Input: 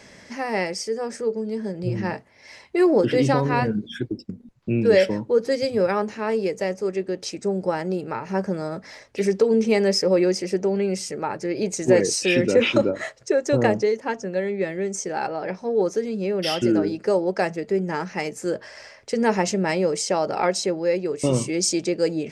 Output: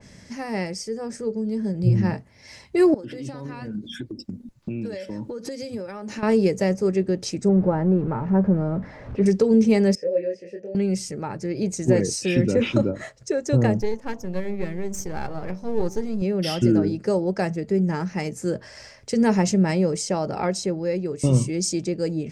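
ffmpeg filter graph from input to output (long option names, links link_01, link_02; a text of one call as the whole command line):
ffmpeg -i in.wav -filter_complex "[0:a]asettb=1/sr,asplit=3[link_01][link_02][link_03];[link_01]atrim=end=2.944[link_04];[link_02]atrim=start=2.94:end=6.23,asetpts=PTS-STARTPTS,afade=type=in:duration=0.004:curve=qsin,afade=type=out:start_time=3.286:duration=0.004:curve=qsin,lowshelf=frequency=160:gain=-11,aecho=1:1:3.4:0.3,atrim=end_sample=145089,acompressor=threshold=-34dB:ratio=8:attack=3.2:release=140:knee=1:detection=peak[link_05];[link_03]atrim=start=6.226[link_06];[link_04][link_05]acrossfade=duration=0.004:curve1=hsin:curve2=qsin[link_07];[link_07][link_06]acrossfade=duration=0.004:curve1=qsin:curve2=hsin,asettb=1/sr,asplit=3[link_08][link_09][link_10];[link_08]atrim=end=7.494[link_11];[link_09]atrim=start=7.49:end=9.26,asetpts=PTS-STARTPTS,afade=type=in:duration=0.004:curve=qsin,afade=type=out:start_time=1.766:duration=0.004:curve=qsin,aeval=exprs='val(0)+0.5*0.0188*sgn(val(0))':channel_layout=same,lowpass=1300[link_12];[link_10]atrim=start=9.256[link_13];[link_11][link_12]acrossfade=duration=0.004:curve1=hsin:curve2=qsin[link_14];[link_14][link_13]acrossfade=duration=0.004:curve1=qsin:curve2=hsin,asettb=1/sr,asplit=3[link_15][link_16][link_17];[link_15]atrim=end=9.954[link_18];[link_16]atrim=start=9.95:end=10.75,asetpts=PTS-STARTPTS,afade=type=in:duration=0.004:curve=qsin,afade=type=out:start_time=0.796:duration=0.004:curve=qsin,asplit=3[link_19][link_20][link_21];[link_19]bandpass=frequency=530:width_type=q:width=8,volume=0dB[link_22];[link_20]bandpass=frequency=1840:width_type=q:width=8,volume=-6dB[link_23];[link_21]bandpass=frequency=2480:width_type=q:width=8,volume=-9dB[link_24];[link_22][link_23][link_24]amix=inputs=3:normalize=0,lowshelf=frequency=130:gain=10,asplit=2[link_25][link_26];[link_26]adelay=24,volume=-3dB[link_27];[link_25][link_27]amix=inputs=2:normalize=0,atrim=end_sample=35280[link_28];[link_17]atrim=start=10.746[link_29];[link_18][link_28]acrossfade=duration=0.004:curve1=hsin:curve2=qsin[link_30];[link_30][link_29]acrossfade=duration=0.004:curve1=qsin:curve2=hsin,asettb=1/sr,asplit=3[link_31][link_32][link_33];[link_31]atrim=end=13.804[link_34];[link_32]atrim=start=13.8:end=16.22,asetpts=PTS-STARTPTS,afade=type=in:duration=0.004:curve=qsin,afade=type=out:start_time=2.416:duration=0.004:curve=qsin,aeval=exprs='if(lt(val(0),0),0.447*val(0),val(0))':channel_layout=same,bandreject=frequency=96.37:width_type=h:width=4,bandreject=frequency=192.74:width_type=h:width=4,bandreject=frequency=289.11:width_type=h:width=4,bandreject=frequency=385.48:width_type=h:width=4,bandreject=frequency=481.85:width_type=h:width=4,bandreject=frequency=578.22:width_type=h:width=4,bandreject=frequency=674.59:width_type=h:width=4,bandreject=frequency=770.96:width_type=h:width=4,bandreject=frequency=867.33:width_type=h:width=4,bandreject=frequency=963.7:width_type=h:width=4,bandreject=frequency=1060.07:width_type=h:width=4[link_35];[link_33]atrim=start=16.216[link_36];[link_34][link_35]acrossfade=duration=0.004:curve1=hsin:curve2=qsin[link_37];[link_37][link_36]acrossfade=duration=0.004:curve1=qsin:curve2=hsin,bass=frequency=250:gain=14,treble=frequency=4000:gain=7,dynaudnorm=framelen=400:gausssize=9:maxgain=11.5dB,adynamicequalizer=threshold=0.0158:dfrequency=2400:dqfactor=0.7:tfrequency=2400:tqfactor=0.7:attack=5:release=100:ratio=0.375:range=2.5:mode=cutabove:tftype=highshelf,volume=-6dB" out.wav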